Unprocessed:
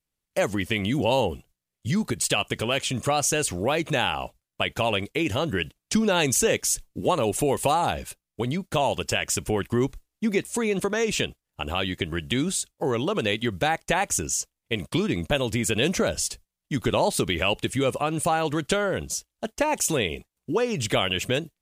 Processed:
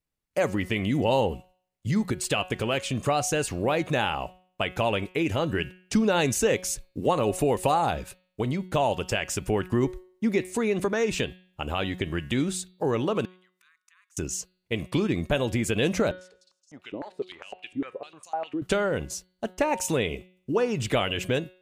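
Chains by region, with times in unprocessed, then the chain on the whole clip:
13.25–14.17 s: inverted gate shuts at -23 dBFS, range -25 dB + compression 2:1, threshold -54 dBFS + brick-wall FIR high-pass 1 kHz
16.11–18.62 s: feedback echo behind a high-pass 163 ms, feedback 63%, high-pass 3.2 kHz, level -15.5 dB + step-sequenced band-pass 9.9 Hz 300–6200 Hz
whole clip: peaking EQ 11 kHz -6.5 dB 2.9 oct; band-stop 3.2 kHz, Q 21; de-hum 183.6 Hz, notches 25

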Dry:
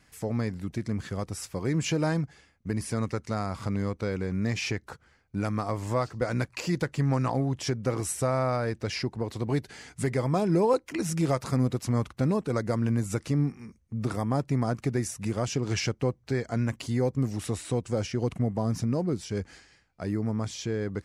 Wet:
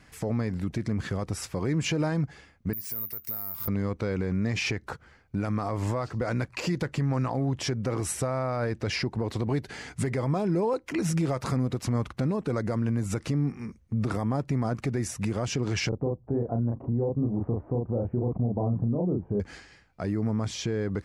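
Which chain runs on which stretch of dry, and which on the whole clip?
2.73–3.68 s: careless resampling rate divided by 3×, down filtered, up zero stuff + pre-emphasis filter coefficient 0.8 + compression 10:1, threshold -27 dBFS
15.89–19.40 s: inverse Chebyshev low-pass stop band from 3.8 kHz, stop band 70 dB + doubling 34 ms -3 dB
whole clip: treble shelf 4.9 kHz -8.5 dB; compression 2.5:1, threshold -28 dBFS; peak limiter -26.5 dBFS; trim +7 dB

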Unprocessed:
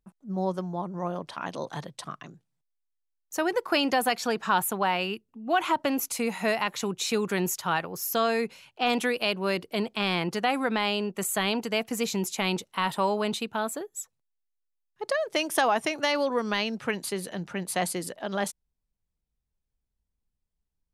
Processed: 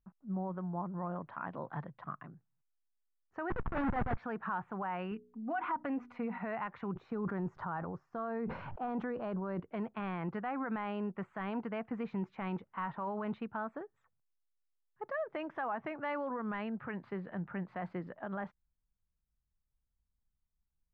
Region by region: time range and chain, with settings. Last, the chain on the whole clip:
3.50–4.17 s: treble shelf 3.7 kHz -10 dB + Schmitt trigger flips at -30.5 dBFS + companded quantiser 4-bit
5.11–6.38 s: comb 4.1 ms, depth 57% + de-hum 60.63 Hz, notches 7
6.92–9.60 s: peaking EQ 2.5 kHz -13 dB 1.3 oct + decay stretcher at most 38 dB/s
whole clip: low-pass 1.6 kHz 24 dB/octave; peak limiter -22.5 dBFS; peaking EQ 440 Hz -8.5 dB 1.9 oct; trim -1 dB

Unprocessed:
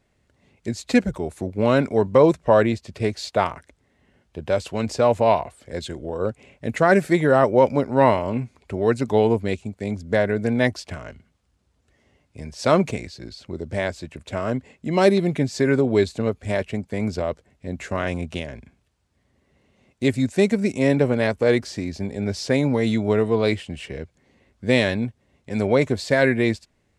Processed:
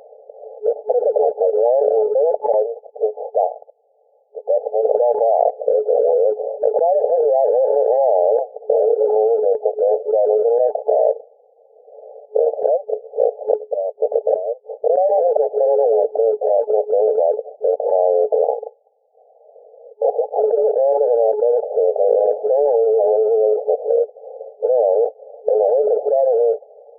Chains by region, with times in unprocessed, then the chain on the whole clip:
2.52–4.85 s: differentiator + decimation joined by straight lines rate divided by 4×
8.59–9.16 s: tilt shelf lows +4 dB, about 640 Hz + detune thickener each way 55 cents
10.76–14.90 s: waveshaping leveller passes 1 + inverted gate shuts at -15 dBFS, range -32 dB
15.92–16.45 s: bass shelf 390 Hz -10 dB + tape noise reduction on one side only encoder only
18.35–20.44 s: waveshaping leveller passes 2 + frequency inversion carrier 2.6 kHz + compression 2:1, threshold -35 dBFS
whole clip: local Wiener filter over 41 samples; FFT band-pass 430–860 Hz; level flattener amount 100%; trim -2 dB

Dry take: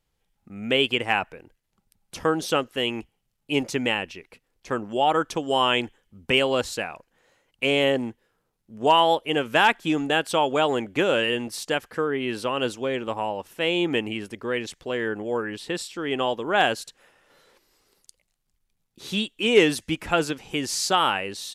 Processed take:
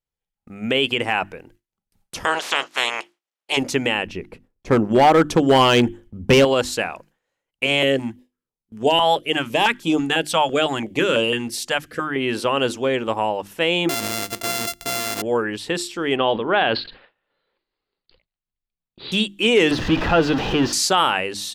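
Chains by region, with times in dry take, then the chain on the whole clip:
2.24–3.56 s: spectral peaks clipped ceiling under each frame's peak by 29 dB + high-pass 430 Hz + distance through air 64 m
4.07–6.45 s: bass shelf 490 Hz +11.5 dB + hard clipper -14 dBFS + tape noise reduction on one side only decoder only
7.66–12.16 s: hum notches 50/100/150/200/250/300/350 Hz + step-sequenced notch 6 Hz 370–1800 Hz
13.89–15.22 s: sorted samples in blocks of 64 samples + treble shelf 2.2 kHz +12 dB
16.16–19.12 s: steep low-pass 4.6 kHz 96 dB/octave + decay stretcher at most 130 dB/s
19.71–20.73 s: jump at every zero crossing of -21.5 dBFS + distance through air 250 m + band-stop 2.2 kHz, Q 6.3
whole clip: hum notches 50/100/150/200/250/300/350 Hz; gate with hold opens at -43 dBFS; peak limiter -13 dBFS; trim +6 dB

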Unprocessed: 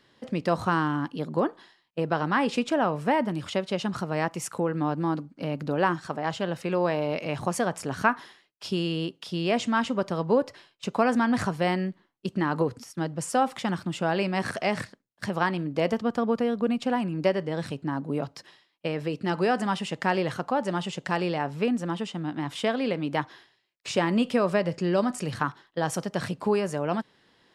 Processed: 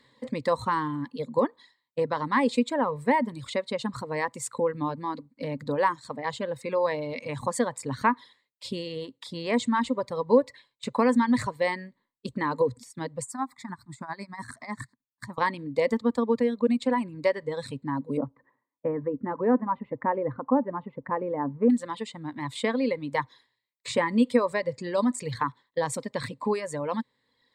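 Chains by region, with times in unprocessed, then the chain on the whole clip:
13.22–15.38 s: tremolo 10 Hz, depth 76% + static phaser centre 1.2 kHz, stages 4
18.17–21.70 s: low-pass 1.4 kHz 24 dB/octave + peaking EQ 280 Hz +8 dB 0.44 oct
whole clip: rippled EQ curve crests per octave 1, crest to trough 12 dB; reverb removal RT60 1.5 s; trim -1.5 dB

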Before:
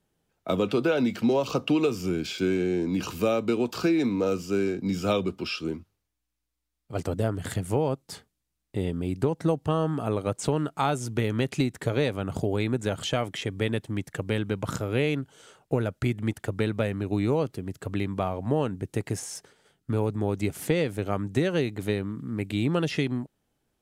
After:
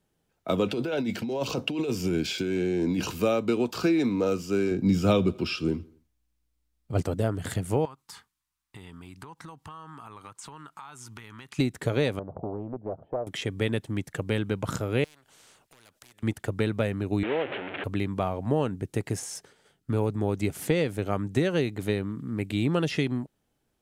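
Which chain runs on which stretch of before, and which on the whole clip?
0.66–3.12 s: band-stop 1.2 kHz, Q 5.3 + compressor with a negative ratio -27 dBFS
4.71–7.02 s: bass shelf 280 Hz +8.5 dB + feedback delay 84 ms, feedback 48%, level -23.5 dB
7.85–11.59 s: resonant low shelf 770 Hz -9 dB, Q 3 + compression 8:1, threshold -40 dBFS
12.19–13.27 s: four-pole ladder low-pass 750 Hz, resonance 60% + loudspeaker Doppler distortion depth 0.55 ms
15.04–16.23 s: compression 2:1, threshold -39 dBFS + hard clipper -29 dBFS + spectrum-flattening compressor 4:1
17.23–17.84 s: one-bit delta coder 16 kbps, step -23 dBFS + high-pass 380 Hz + peaking EQ 1.1 kHz -7.5 dB 0.51 oct
whole clip: none

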